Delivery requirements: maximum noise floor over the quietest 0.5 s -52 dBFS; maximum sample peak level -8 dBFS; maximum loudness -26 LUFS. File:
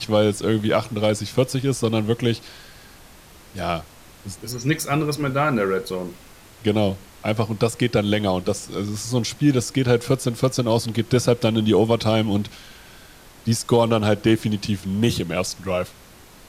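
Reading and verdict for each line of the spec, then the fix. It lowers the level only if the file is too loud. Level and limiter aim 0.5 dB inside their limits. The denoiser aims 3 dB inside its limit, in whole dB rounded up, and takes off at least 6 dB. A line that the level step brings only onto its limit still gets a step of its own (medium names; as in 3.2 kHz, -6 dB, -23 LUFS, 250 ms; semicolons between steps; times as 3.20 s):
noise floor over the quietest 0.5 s -46 dBFS: fail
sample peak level -4.0 dBFS: fail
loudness -22.0 LUFS: fail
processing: noise reduction 6 dB, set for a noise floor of -46 dBFS; trim -4.5 dB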